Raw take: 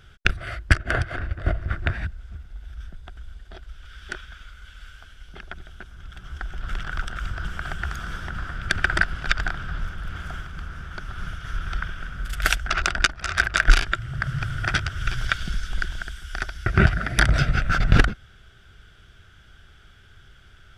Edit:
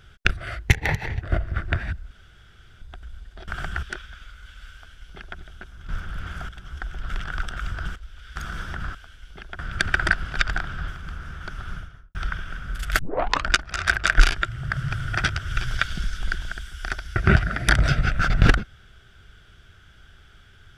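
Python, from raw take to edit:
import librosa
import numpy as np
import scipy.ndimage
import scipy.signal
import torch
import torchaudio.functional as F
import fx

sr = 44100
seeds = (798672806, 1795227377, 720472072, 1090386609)

y = fx.studio_fade_out(x, sr, start_s=11.12, length_s=0.53)
y = fx.edit(y, sr, fx.speed_span(start_s=0.67, length_s=0.69, speed=1.26),
    fx.room_tone_fill(start_s=2.25, length_s=0.71),
    fx.swap(start_s=3.62, length_s=0.4, other_s=7.55, other_length_s=0.35),
    fx.duplicate(start_s=4.93, length_s=0.64, to_s=8.49),
    fx.move(start_s=9.78, length_s=0.6, to_s=6.08),
    fx.tape_start(start_s=12.49, length_s=0.49), tone=tone)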